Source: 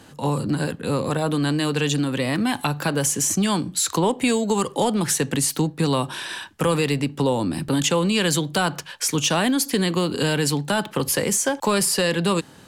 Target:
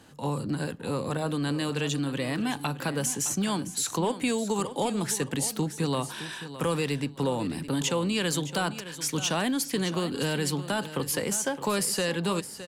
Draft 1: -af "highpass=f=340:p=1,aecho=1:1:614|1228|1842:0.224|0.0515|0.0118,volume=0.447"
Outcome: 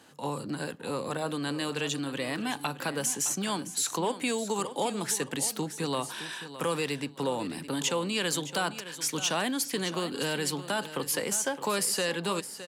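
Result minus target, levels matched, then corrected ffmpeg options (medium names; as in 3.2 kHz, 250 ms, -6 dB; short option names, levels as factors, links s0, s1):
250 Hz band -3.0 dB
-af "aecho=1:1:614|1228|1842:0.224|0.0515|0.0118,volume=0.447"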